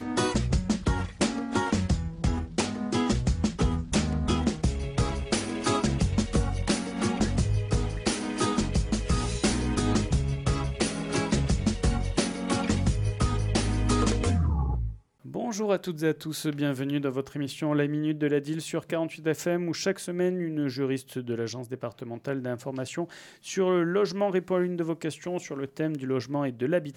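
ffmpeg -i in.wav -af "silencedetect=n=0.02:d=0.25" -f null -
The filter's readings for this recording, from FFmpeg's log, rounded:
silence_start: 14.92
silence_end: 15.26 | silence_duration: 0.34
silence_start: 23.13
silence_end: 23.47 | silence_duration: 0.34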